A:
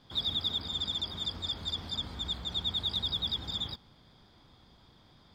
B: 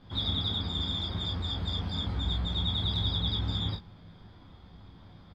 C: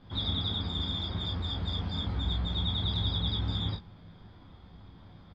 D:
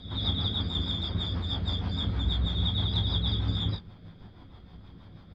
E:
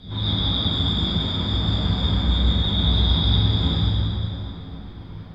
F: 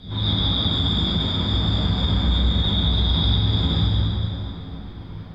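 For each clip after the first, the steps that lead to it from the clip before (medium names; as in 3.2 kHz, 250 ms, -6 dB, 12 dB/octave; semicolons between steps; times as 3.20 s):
tone controls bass +7 dB, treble -12 dB; on a send: early reflections 11 ms -3.5 dB, 30 ms -4.5 dB, 48 ms -7.5 dB; on the sum: trim +1.5 dB
distance through air 67 m
pre-echo 239 ms -14.5 dB; rotary cabinet horn 6.3 Hz; trim +4 dB
plate-style reverb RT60 3.5 s, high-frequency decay 0.7×, DRR -9 dB
peak limiter -12.5 dBFS, peak gain reduction 4.5 dB; trim +1.5 dB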